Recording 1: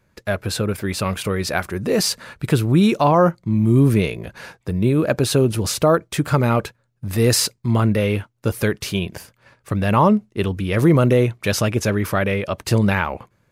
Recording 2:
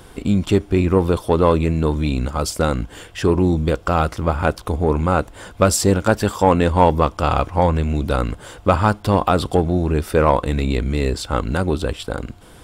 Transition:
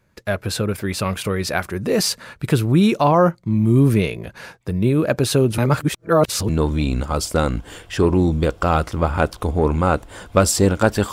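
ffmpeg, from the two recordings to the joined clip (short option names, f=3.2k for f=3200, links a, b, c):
-filter_complex "[0:a]apad=whole_dur=11.12,atrim=end=11.12,asplit=2[a][b];[a]atrim=end=5.582[c];[b]atrim=start=5.578:end=6.492,asetpts=PTS-STARTPTS,areverse[d];[1:a]atrim=start=1.738:end=6.37[e];[c][d]acrossfade=d=0.004:c1=hsin:c2=hsin[f];[f][e]acrossfade=d=0.004:c1=hsin:c2=hsin"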